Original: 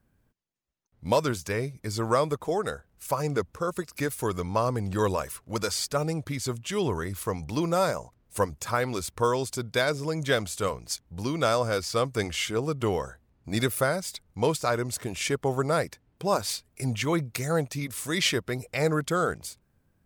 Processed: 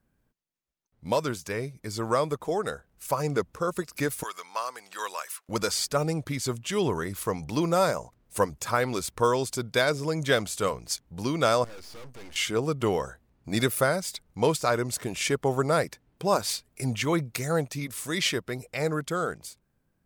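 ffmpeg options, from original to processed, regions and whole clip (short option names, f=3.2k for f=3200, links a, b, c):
-filter_complex "[0:a]asettb=1/sr,asplit=3[a][b][c];[a]atrim=end=4.234[d];[b]atrim=start=4.23:end=5.49,asetpts=PTS-STARTPTS,afade=t=in:d=0.004:c=qsin,afade=t=out:st=1.256:d=0.004:c=qsin,highpass=1.2k,acrusher=bits=9:mode=log:mix=0:aa=0.000001[e];[c]atrim=start=5.486[f];[d][e]acrossfade=d=0.004:c1=hsin:c2=qsin[g];[g][f]acrossfade=d=0.004:c1=qsin:c2=hsin,asettb=1/sr,asplit=3[h][i][j];[h]atrim=end=11.644[k];[i]atrim=start=11.64:end=12.36,asetpts=PTS-STARTPTS,afade=t=in:d=0.004:c=qsin,afade=t=out:st=0.716:d=0.004:c=qsin,acrossover=split=5400[l][m];[m]acompressor=threshold=-50dB:ratio=4:attack=1:release=60[n];[l][n]amix=inputs=2:normalize=0,aeval=exprs='max(val(0),0)':c=same,aeval=exprs='(tanh(70.8*val(0)+0.2)-tanh(0.2))/70.8':c=same[o];[j]atrim=start=12.356[p];[k][o]acrossfade=d=0.004:c1=hsin:c2=qsin[q];[q][p]acrossfade=d=0.004:c1=qsin:c2=hsin,dynaudnorm=f=250:g=21:m=4dB,equalizer=f=85:t=o:w=0.58:g=-7.5,volume=-2.5dB"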